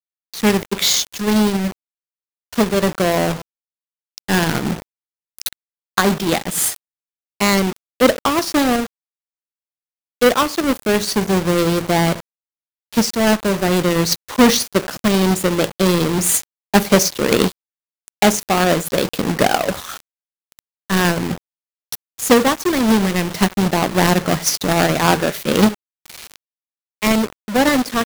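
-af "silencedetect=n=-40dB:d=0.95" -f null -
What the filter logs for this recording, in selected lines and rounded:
silence_start: 8.87
silence_end: 10.21 | silence_duration: 1.35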